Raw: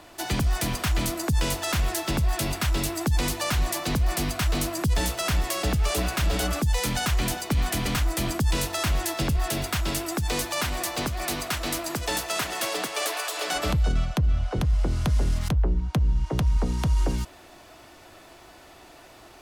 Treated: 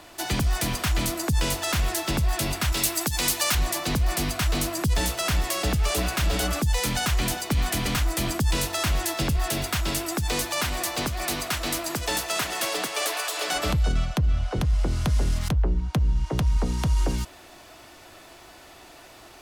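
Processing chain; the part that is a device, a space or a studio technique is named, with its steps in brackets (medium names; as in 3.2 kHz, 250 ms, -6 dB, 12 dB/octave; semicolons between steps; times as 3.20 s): exciter from parts (in parallel at -5.5 dB: high-pass 2 kHz 6 dB/octave + saturation -34.5 dBFS, distortion -7 dB); 2.72–3.55 s: on the sum: tilt EQ +2 dB/octave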